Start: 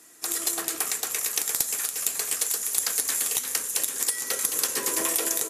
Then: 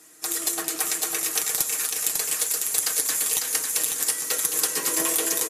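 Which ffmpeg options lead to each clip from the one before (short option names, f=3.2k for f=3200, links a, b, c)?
-af "aecho=1:1:6.4:0.54,aecho=1:1:549:0.562"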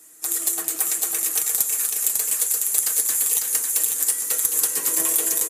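-af "aexciter=amount=3.1:drive=4:freq=7k,volume=-4dB"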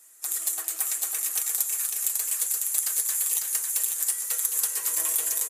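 -af "highpass=670,volume=-5dB"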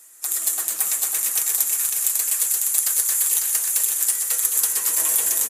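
-filter_complex "[0:a]areverse,acompressor=mode=upward:threshold=-37dB:ratio=2.5,areverse,asplit=8[a][b][c][d][e][f][g][h];[b]adelay=125,afreqshift=-120,volume=-8dB[i];[c]adelay=250,afreqshift=-240,volume=-13.2dB[j];[d]adelay=375,afreqshift=-360,volume=-18.4dB[k];[e]adelay=500,afreqshift=-480,volume=-23.6dB[l];[f]adelay=625,afreqshift=-600,volume=-28.8dB[m];[g]adelay=750,afreqshift=-720,volume=-34dB[n];[h]adelay=875,afreqshift=-840,volume=-39.2dB[o];[a][i][j][k][l][m][n][o]amix=inputs=8:normalize=0,volume=5dB"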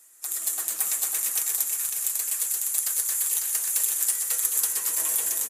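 -af "dynaudnorm=f=350:g=3:m=11.5dB,volume=-6.5dB"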